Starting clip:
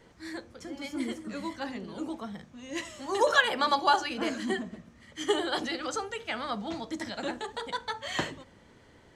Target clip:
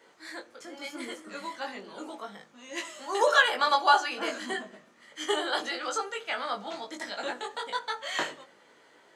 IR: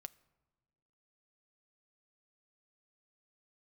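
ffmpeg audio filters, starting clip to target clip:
-filter_complex "[0:a]highpass=440,equalizer=f=1.4k:w=6.9:g=3.5,bandreject=f=5.6k:w=22,asplit=2[a][b];[1:a]atrim=start_sample=2205,adelay=20[c];[b][c]afir=irnorm=-1:irlink=0,volume=2.5dB[d];[a][d]amix=inputs=2:normalize=0"

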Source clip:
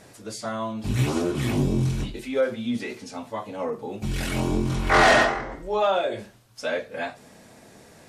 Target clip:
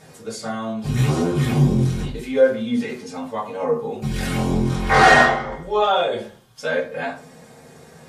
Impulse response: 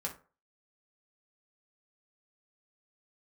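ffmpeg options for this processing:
-filter_complex "[0:a]asettb=1/sr,asplit=3[a][b][c];[a]atrim=end=5.264[d];[b]atrim=start=5.26:end=6.62,asetpts=PTS-STARTPTS,afade=t=in:d=0.004:c=qsin,afade=t=out:st=1.356:d=0.004:c=qsin,equalizer=f=3.3k:t=o:w=0.21:g=9.5[e];[c]atrim=start=6.616[f];[d][e]acrossfade=d=0.004:c1=hsin:c2=qsin[g];[g][f]acrossfade=d=0.004:c1=qsin:c2=hsin[h];[1:a]atrim=start_sample=2205,asetrate=40572,aresample=44100[i];[h][i]afir=irnorm=-1:irlink=0,volume=2.5dB"

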